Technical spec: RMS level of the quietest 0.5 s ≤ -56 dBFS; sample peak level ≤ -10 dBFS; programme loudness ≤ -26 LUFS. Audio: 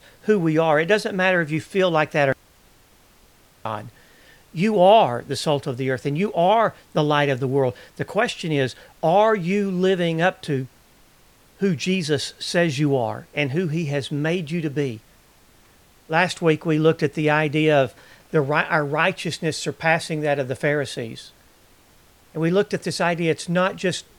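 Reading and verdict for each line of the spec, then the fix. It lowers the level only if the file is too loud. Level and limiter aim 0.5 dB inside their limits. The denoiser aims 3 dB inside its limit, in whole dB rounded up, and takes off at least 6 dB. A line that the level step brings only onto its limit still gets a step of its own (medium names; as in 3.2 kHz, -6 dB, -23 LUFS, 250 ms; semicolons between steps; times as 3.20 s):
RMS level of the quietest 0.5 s -54 dBFS: fail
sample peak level -3.0 dBFS: fail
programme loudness -21.5 LUFS: fail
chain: trim -5 dB; peak limiter -10.5 dBFS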